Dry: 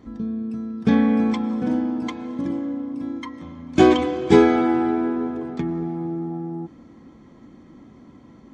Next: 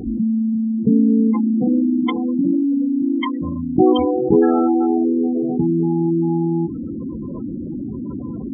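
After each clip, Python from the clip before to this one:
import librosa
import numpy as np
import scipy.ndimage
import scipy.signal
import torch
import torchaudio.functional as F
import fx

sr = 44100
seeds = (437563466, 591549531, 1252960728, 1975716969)

y = fx.rider(x, sr, range_db=4, speed_s=2.0)
y = fx.spec_gate(y, sr, threshold_db=-15, keep='strong')
y = fx.env_flatten(y, sr, amount_pct=50)
y = y * 10.0 ** (-1.0 / 20.0)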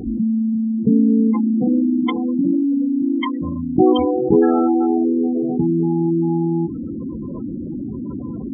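y = x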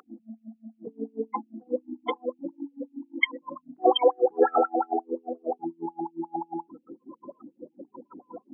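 y = fx.filter_lfo_highpass(x, sr, shape='sine', hz=5.6, low_hz=500.0, high_hz=2800.0, q=6.7)
y = y * 10.0 ** (-7.0 / 20.0)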